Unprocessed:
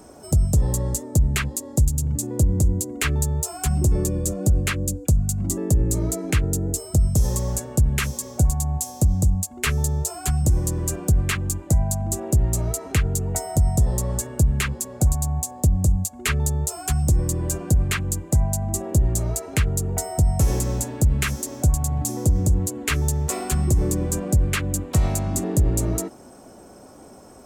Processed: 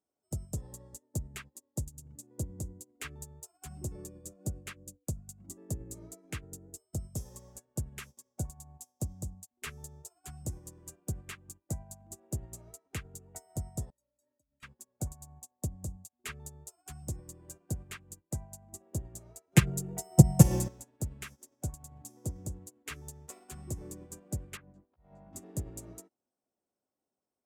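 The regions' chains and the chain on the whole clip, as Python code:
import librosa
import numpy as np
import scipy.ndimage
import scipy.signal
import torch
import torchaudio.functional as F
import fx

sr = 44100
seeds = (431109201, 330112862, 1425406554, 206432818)

y = fx.chain(x, sr, fx.stiff_resonator(f0_hz=280.0, decay_s=0.2, stiffness=0.03),
    fx.sustainer(db_per_s=21.0), at=(13.9, 14.63))
y = fx.chain(y, sr, fx.highpass(hz=61.0, slope=24),
    fx.low_shelf(hz=220.0, db=11.0),
    fx.comb(ms=5.7, depth=0.93), at=(19.51, 20.68))
y = fx.chain(y, sr, fx.lowpass(hz=1400.0, slope=12),
    fx.auto_swell(attack_ms=224.0),
    fx.doubler(ms=15.0, db=-4.0), at=(24.57, 25.33))
y = fx.low_shelf(y, sr, hz=85.0, db=-11.0)
y = fx.notch(y, sr, hz=4200.0, q=21.0)
y = fx.upward_expand(y, sr, threshold_db=-40.0, expansion=2.5)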